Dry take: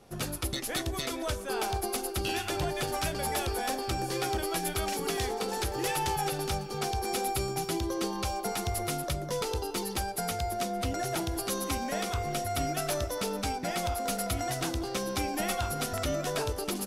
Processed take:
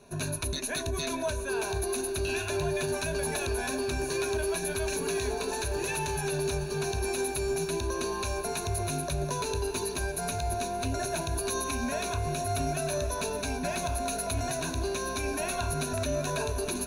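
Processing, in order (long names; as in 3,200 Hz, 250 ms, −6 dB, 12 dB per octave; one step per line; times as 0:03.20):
EQ curve with evenly spaced ripples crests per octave 1.5, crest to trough 15 dB
brickwall limiter −22 dBFS, peak gain reduction 7 dB
feedback delay with all-pass diffusion 1,091 ms, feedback 77%, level −15.5 dB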